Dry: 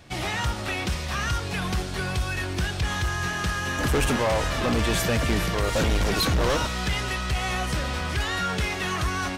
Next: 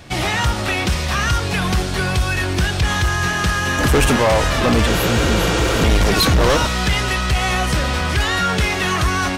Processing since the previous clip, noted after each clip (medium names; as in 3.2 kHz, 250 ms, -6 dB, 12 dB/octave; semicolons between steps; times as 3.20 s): spectral replace 4.89–5.79 s, 290–10000 Hz after; in parallel at 0 dB: peak limiter -21 dBFS, peak gain reduction 10 dB; on the sum: trim +3.5 dB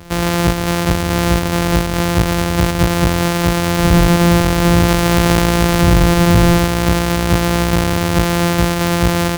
sorted samples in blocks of 256 samples; trim +3.5 dB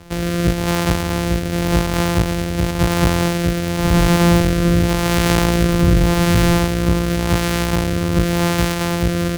rotary cabinet horn 0.9 Hz; trim -1 dB